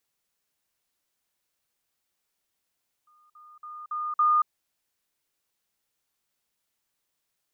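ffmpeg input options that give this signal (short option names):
-f lavfi -i "aevalsrc='pow(10,(-58+10*floor(t/0.28))/20)*sin(2*PI*1220*t)*clip(min(mod(t,0.28),0.23-mod(t,0.28))/0.005,0,1)':d=1.4:s=44100"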